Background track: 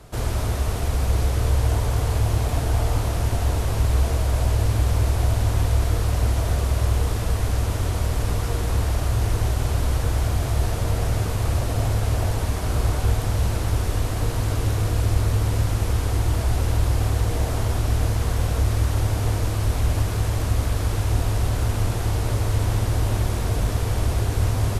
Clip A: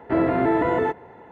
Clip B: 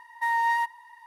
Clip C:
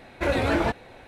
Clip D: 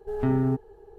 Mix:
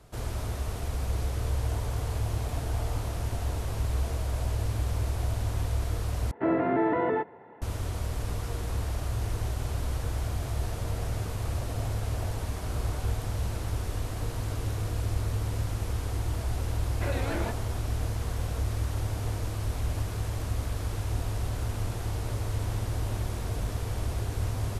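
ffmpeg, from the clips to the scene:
ffmpeg -i bed.wav -i cue0.wav -i cue1.wav -i cue2.wav -filter_complex "[0:a]volume=-9dB[link_01];[1:a]highpass=110,lowpass=2900[link_02];[link_01]asplit=2[link_03][link_04];[link_03]atrim=end=6.314[link_05];[link_02]atrim=end=1.31,asetpts=PTS-STARTPTS,volume=-5dB[link_06];[link_04]atrim=start=7.616[link_07];[3:a]atrim=end=1.07,asetpts=PTS-STARTPTS,volume=-10dB,afade=type=in:duration=0.004:curve=hsin,afade=type=out:start_time=1.066:duration=0.004:curve=hsin,adelay=16800[link_08];[link_05][link_06]acrossfade=duration=0.004:curve1=hsin:curve2=hsin[link_09];[link_09][link_07]acrossfade=duration=0.004:curve1=hsin:curve2=hsin[link_10];[link_10][link_08]amix=inputs=2:normalize=0" out.wav

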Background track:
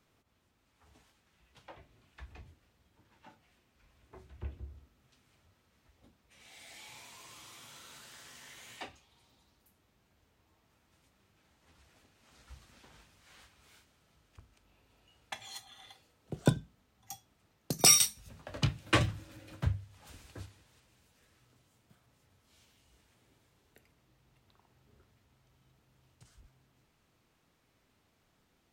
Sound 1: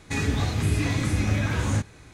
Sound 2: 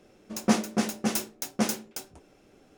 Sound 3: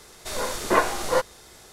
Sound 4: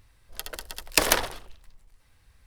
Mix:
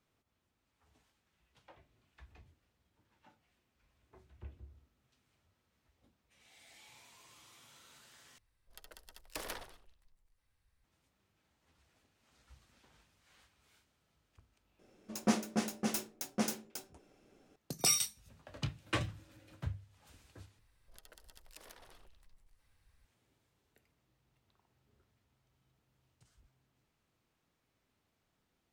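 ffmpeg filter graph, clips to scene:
ffmpeg -i bed.wav -i cue0.wav -i cue1.wav -i cue2.wav -i cue3.wav -filter_complex "[4:a]asplit=2[link_01][link_02];[0:a]volume=-8dB[link_03];[link_01]asoftclip=type=tanh:threshold=-15.5dB[link_04];[link_02]acompressor=threshold=-43dB:ratio=6:attack=3.2:release=140:knee=1:detection=peak[link_05];[link_03]asplit=4[link_06][link_07][link_08][link_09];[link_06]atrim=end=8.384[link_10];[link_04]atrim=end=2.46,asetpts=PTS-STARTPTS,volume=-18dB[link_11];[link_07]atrim=start=10.836:end=14.794[link_12];[2:a]atrim=end=2.77,asetpts=PTS-STARTPTS,volume=-7.5dB[link_13];[link_08]atrim=start=17.556:end=20.594[link_14];[link_05]atrim=end=2.46,asetpts=PTS-STARTPTS,volume=-11dB[link_15];[link_09]atrim=start=23.046[link_16];[link_10][link_11]acrossfade=duration=0.004:curve1=hsin:curve2=hsin[link_17];[link_17][link_12]acrossfade=duration=0.004:curve1=hsin:curve2=hsin[link_18];[link_18][link_13]acrossfade=duration=0.004:curve1=hsin:curve2=hsin[link_19];[link_19][link_14]acrossfade=duration=0.004:curve1=hsin:curve2=hsin[link_20];[link_20][link_15]acrossfade=duration=0.004:curve1=hsin:curve2=hsin[link_21];[link_21][link_16]acrossfade=duration=0.004:curve1=hsin:curve2=hsin" out.wav

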